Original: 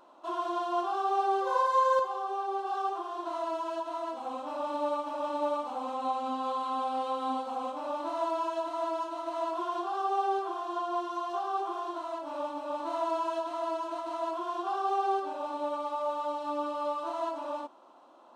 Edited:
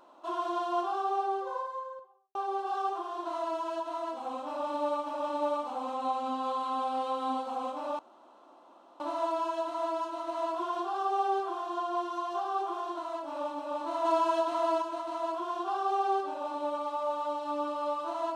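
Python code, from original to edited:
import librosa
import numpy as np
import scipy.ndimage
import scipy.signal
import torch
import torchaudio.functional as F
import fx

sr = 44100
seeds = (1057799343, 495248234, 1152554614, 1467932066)

y = fx.studio_fade_out(x, sr, start_s=0.69, length_s=1.66)
y = fx.edit(y, sr, fx.insert_room_tone(at_s=7.99, length_s=1.01),
    fx.clip_gain(start_s=13.04, length_s=0.77, db=4.5), tone=tone)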